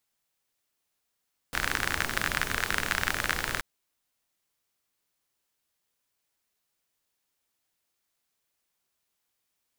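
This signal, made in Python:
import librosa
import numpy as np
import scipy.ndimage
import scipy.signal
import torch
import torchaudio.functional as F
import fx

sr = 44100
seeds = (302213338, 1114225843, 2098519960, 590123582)

y = fx.rain(sr, seeds[0], length_s=2.08, drops_per_s=39.0, hz=1600.0, bed_db=-4.0)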